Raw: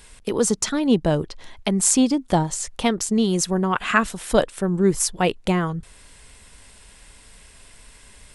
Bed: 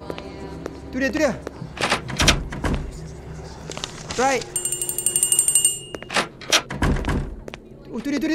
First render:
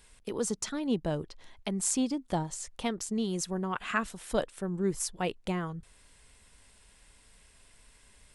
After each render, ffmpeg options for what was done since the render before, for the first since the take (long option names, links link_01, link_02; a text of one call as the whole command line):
ffmpeg -i in.wav -af "volume=-11.5dB" out.wav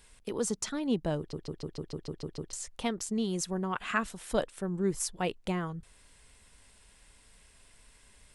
ffmpeg -i in.wav -filter_complex "[0:a]asplit=10[link_01][link_02][link_03][link_04][link_05][link_06][link_07][link_08][link_09][link_10];[link_01]atrim=end=1.332[link_11];[link_02]atrim=start=1.178:end=1.332[link_12];[link_03]atrim=start=1.178:end=1.332[link_13];[link_04]atrim=start=1.178:end=1.332[link_14];[link_05]atrim=start=1.178:end=1.332[link_15];[link_06]atrim=start=1.178:end=1.332[link_16];[link_07]atrim=start=1.178:end=1.332[link_17];[link_08]atrim=start=1.178:end=1.332[link_18];[link_09]atrim=start=1.178:end=1.332[link_19];[link_10]atrim=start=2.528[link_20];[link_11][link_12]acrossfade=duration=0.004:curve1=hsin:curve2=hsin[link_21];[link_21][link_13]acrossfade=duration=0.004:curve1=hsin:curve2=hsin[link_22];[link_22][link_14]acrossfade=duration=0.004:curve1=hsin:curve2=hsin[link_23];[link_23][link_15]acrossfade=duration=0.004:curve1=hsin:curve2=hsin[link_24];[link_24][link_16]acrossfade=duration=0.004:curve1=hsin:curve2=hsin[link_25];[link_25][link_17]acrossfade=duration=0.004:curve1=hsin:curve2=hsin[link_26];[link_26][link_18]acrossfade=duration=0.004:curve1=hsin:curve2=hsin[link_27];[link_27][link_19]acrossfade=duration=0.004:curve1=hsin:curve2=hsin[link_28];[link_28][link_20]acrossfade=duration=0.004:curve1=hsin:curve2=hsin" out.wav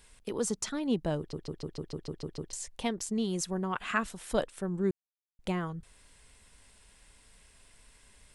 ffmpeg -i in.wav -filter_complex "[0:a]asettb=1/sr,asplit=3[link_01][link_02][link_03];[link_01]atrim=end=2.494[link_04];[link_02]atrim=start=2.49:end=3.04,asetpts=PTS-STARTPTS,afade=type=in:duration=0.004:curve=qsin,afade=type=out:start_time=0.546:duration=0.004:curve=qsin,bandreject=frequency=1300:width=5.3[link_05];[link_03]atrim=start=3.036[link_06];[link_04][link_05]acrossfade=duration=0.004:curve1=hsin:curve2=qsin[link_07];[link_07][link_06]acrossfade=duration=0.004:curve1=qsin:curve2=hsin,asplit=3[link_08][link_09][link_10];[link_08]atrim=end=4.91,asetpts=PTS-STARTPTS,afade=type=out:start_time=4.906:duration=0.004:curve=hsin[link_11];[link_09]atrim=start=4.91:end=5.39,asetpts=PTS-STARTPTS,volume=0[link_12];[link_10]atrim=start=5.39,asetpts=PTS-STARTPTS,afade=type=in:duration=0.004:curve=hsin[link_13];[link_11][link_12][link_13]concat=n=3:v=0:a=1" out.wav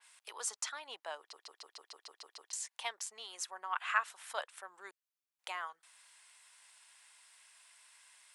ffmpeg -i in.wav -af "highpass=frequency=850:width=0.5412,highpass=frequency=850:width=1.3066,adynamicequalizer=threshold=0.00224:dfrequency=3200:dqfactor=0.7:tfrequency=3200:tqfactor=0.7:attack=5:release=100:ratio=0.375:range=3.5:mode=cutabove:tftype=highshelf" out.wav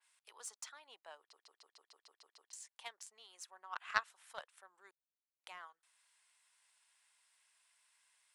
ffmpeg -i in.wav -filter_complex "[0:a]asplit=2[link_01][link_02];[link_02]asoftclip=type=tanh:threshold=-28dB,volume=-4dB[link_03];[link_01][link_03]amix=inputs=2:normalize=0,aeval=exprs='0.211*(cos(1*acos(clip(val(0)/0.211,-1,1)))-cos(1*PI/2))+0.0596*(cos(3*acos(clip(val(0)/0.211,-1,1)))-cos(3*PI/2))':channel_layout=same" out.wav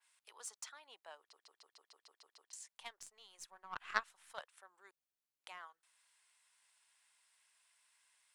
ffmpeg -i in.wav -filter_complex "[0:a]asettb=1/sr,asplit=3[link_01][link_02][link_03];[link_01]atrim=end=2.804[link_04];[link_02]atrim=start=2.8:end=4.33,asetpts=PTS-STARTPTS,afade=type=in:duration=0.004:curve=qsin,afade=type=out:start_time=1.526:duration=0.004:curve=qsin,aeval=exprs='if(lt(val(0),0),0.708*val(0),val(0))':channel_layout=same[link_05];[link_03]atrim=start=4.326[link_06];[link_04][link_05]acrossfade=duration=0.004:curve1=hsin:curve2=qsin[link_07];[link_07][link_06]acrossfade=duration=0.004:curve1=qsin:curve2=hsin" out.wav